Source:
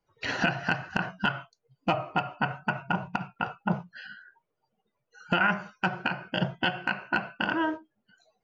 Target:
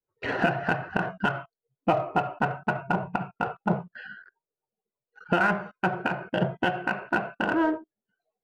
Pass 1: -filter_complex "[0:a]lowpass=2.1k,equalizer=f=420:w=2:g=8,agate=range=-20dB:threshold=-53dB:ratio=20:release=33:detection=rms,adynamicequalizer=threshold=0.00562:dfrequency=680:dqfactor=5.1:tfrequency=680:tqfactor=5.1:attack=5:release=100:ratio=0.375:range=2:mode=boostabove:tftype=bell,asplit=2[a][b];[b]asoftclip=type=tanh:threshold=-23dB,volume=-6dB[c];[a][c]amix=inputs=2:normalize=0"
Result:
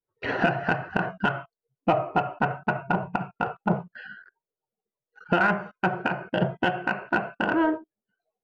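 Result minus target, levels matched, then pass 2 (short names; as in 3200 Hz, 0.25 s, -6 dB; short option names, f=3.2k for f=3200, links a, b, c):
soft clip: distortion -6 dB
-filter_complex "[0:a]lowpass=2.1k,equalizer=f=420:w=2:g=8,agate=range=-20dB:threshold=-53dB:ratio=20:release=33:detection=rms,adynamicequalizer=threshold=0.00562:dfrequency=680:dqfactor=5.1:tfrequency=680:tqfactor=5.1:attack=5:release=100:ratio=0.375:range=2:mode=boostabove:tftype=bell,asplit=2[a][b];[b]asoftclip=type=tanh:threshold=-32.5dB,volume=-6dB[c];[a][c]amix=inputs=2:normalize=0"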